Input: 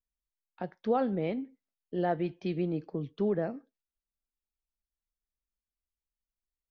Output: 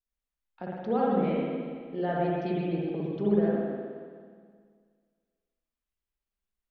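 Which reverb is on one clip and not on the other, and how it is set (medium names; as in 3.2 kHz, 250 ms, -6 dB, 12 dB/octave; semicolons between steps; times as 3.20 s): spring tank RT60 1.9 s, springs 53/58 ms, chirp 75 ms, DRR -5.5 dB; trim -3 dB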